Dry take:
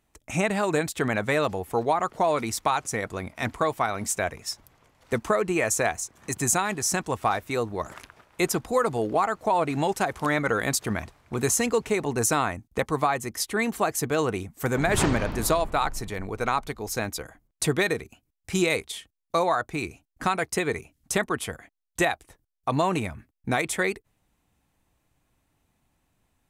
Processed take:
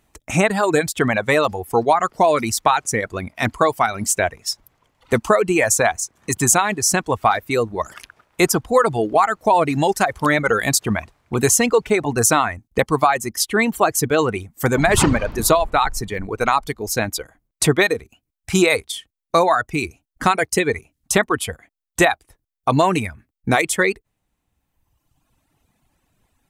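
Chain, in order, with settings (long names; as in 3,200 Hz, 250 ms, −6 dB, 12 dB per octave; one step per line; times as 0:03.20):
reverb reduction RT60 1.5 s
level +8.5 dB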